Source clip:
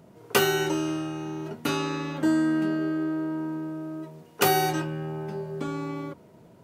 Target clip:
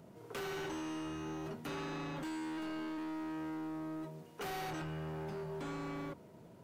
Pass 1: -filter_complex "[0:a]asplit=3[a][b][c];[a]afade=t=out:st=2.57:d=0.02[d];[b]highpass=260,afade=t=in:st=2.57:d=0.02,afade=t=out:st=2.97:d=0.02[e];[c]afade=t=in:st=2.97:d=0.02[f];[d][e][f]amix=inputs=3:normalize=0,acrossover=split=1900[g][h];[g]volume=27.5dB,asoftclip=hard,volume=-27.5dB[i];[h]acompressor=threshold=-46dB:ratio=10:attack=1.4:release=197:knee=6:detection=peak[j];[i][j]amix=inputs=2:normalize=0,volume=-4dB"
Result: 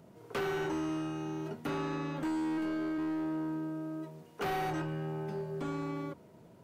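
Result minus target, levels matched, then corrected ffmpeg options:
overloaded stage: distortion -4 dB
-filter_complex "[0:a]asplit=3[a][b][c];[a]afade=t=out:st=2.57:d=0.02[d];[b]highpass=260,afade=t=in:st=2.57:d=0.02,afade=t=out:st=2.97:d=0.02[e];[c]afade=t=in:st=2.97:d=0.02[f];[d][e][f]amix=inputs=3:normalize=0,acrossover=split=1900[g][h];[g]volume=36dB,asoftclip=hard,volume=-36dB[i];[h]acompressor=threshold=-46dB:ratio=10:attack=1.4:release=197:knee=6:detection=peak[j];[i][j]amix=inputs=2:normalize=0,volume=-4dB"

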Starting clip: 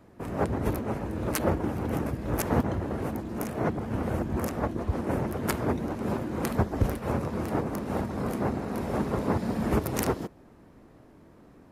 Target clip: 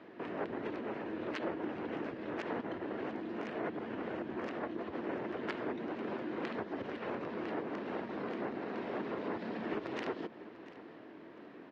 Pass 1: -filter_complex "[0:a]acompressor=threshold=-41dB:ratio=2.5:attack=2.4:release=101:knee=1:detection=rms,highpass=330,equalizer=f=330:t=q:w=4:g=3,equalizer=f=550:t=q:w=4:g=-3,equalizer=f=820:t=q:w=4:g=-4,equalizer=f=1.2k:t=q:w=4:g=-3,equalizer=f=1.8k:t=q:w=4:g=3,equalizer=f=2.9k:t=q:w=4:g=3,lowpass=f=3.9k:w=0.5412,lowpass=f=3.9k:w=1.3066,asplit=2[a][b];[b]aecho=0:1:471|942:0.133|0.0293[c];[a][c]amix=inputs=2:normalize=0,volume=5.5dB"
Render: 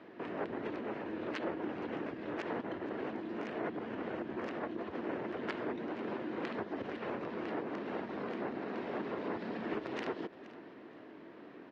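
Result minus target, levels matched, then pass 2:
echo 0.222 s early
-filter_complex "[0:a]acompressor=threshold=-41dB:ratio=2.5:attack=2.4:release=101:knee=1:detection=rms,highpass=330,equalizer=f=330:t=q:w=4:g=3,equalizer=f=550:t=q:w=4:g=-3,equalizer=f=820:t=q:w=4:g=-4,equalizer=f=1.2k:t=q:w=4:g=-3,equalizer=f=1.8k:t=q:w=4:g=3,equalizer=f=2.9k:t=q:w=4:g=3,lowpass=f=3.9k:w=0.5412,lowpass=f=3.9k:w=1.3066,asplit=2[a][b];[b]aecho=0:1:693|1386:0.133|0.0293[c];[a][c]amix=inputs=2:normalize=0,volume=5.5dB"

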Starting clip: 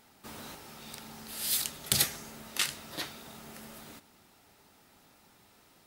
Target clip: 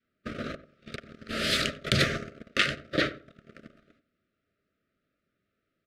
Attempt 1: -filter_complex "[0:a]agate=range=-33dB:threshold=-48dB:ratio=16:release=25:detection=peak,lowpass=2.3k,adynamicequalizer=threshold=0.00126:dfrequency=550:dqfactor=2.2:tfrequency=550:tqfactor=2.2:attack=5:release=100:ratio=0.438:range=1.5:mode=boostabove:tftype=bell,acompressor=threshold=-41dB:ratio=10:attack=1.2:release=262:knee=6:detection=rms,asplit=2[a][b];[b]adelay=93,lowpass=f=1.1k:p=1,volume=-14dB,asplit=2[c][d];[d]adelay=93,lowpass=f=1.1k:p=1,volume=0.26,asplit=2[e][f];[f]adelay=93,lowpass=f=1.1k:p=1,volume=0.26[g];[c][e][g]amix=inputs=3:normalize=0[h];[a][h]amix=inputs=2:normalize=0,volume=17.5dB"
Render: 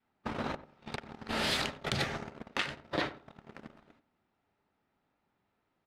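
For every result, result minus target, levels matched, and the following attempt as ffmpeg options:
compressor: peak gain reduction +9 dB; 1000 Hz band +6.5 dB
-filter_complex "[0:a]agate=range=-33dB:threshold=-48dB:ratio=16:release=25:detection=peak,lowpass=2.3k,adynamicequalizer=threshold=0.00126:dfrequency=550:dqfactor=2.2:tfrequency=550:tqfactor=2.2:attack=5:release=100:ratio=0.438:range=1.5:mode=boostabove:tftype=bell,acompressor=threshold=-31dB:ratio=10:attack=1.2:release=262:knee=6:detection=rms,asplit=2[a][b];[b]adelay=93,lowpass=f=1.1k:p=1,volume=-14dB,asplit=2[c][d];[d]adelay=93,lowpass=f=1.1k:p=1,volume=0.26,asplit=2[e][f];[f]adelay=93,lowpass=f=1.1k:p=1,volume=0.26[g];[c][e][g]amix=inputs=3:normalize=0[h];[a][h]amix=inputs=2:normalize=0,volume=17.5dB"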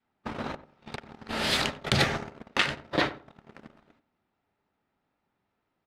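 1000 Hz band +5.0 dB
-filter_complex "[0:a]agate=range=-33dB:threshold=-48dB:ratio=16:release=25:detection=peak,lowpass=2.3k,adynamicequalizer=threshold=0.00126:dfrequency=550:dqfactor=2.2:tfrequency=550:tqfactor=2.2:attack=5:release=100:ratio=0.438:range=1.5:mode=boostabove:tftype=bell,asuperstop=centerf=890:order=12:qfactor=1.7,acompressor=threshold=-31dB:ratio=10:attack=1.2:release=262:knee=6:detection=rms,asplit=2[a][b];[b]adelay=93,lowpass=f=1.1k:p=1,volume=-14dB,asplit=2[c][d];[d]adelay=93,lowpass=f=1.1k:p=1,volume=0.26,asplit=2[e][f];[f]adelay=93,lowpass=f=1.1k:p=1,volume=0.26[g];[c][e][g]amix=inputs=3:normalize=0[h];[a][h]amix=inputs=2:normalize=0,volume=17.5dB"

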